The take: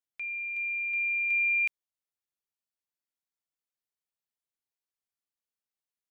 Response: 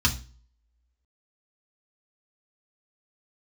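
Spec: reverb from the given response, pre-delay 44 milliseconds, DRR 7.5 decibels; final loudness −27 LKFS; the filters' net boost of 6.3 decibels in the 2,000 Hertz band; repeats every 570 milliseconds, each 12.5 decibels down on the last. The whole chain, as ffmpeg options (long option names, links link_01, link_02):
-filter_complex "[0:a]equalizer=frequency=2000:width_type=o:gain=8,aecho=1:1:570|1140|1710:0.237|0.0569|0.0137,asplit=2[link_01][link_02];[1:a]atrim=start_sample=2205,adelay=44[link_03];[link_02][link_03]afir=irnorm=-1:irlink=0,volume=-20.5dB[link_04];[link_01][link_04]amix=inputs=2:normalize=0,volume=-5.5dB"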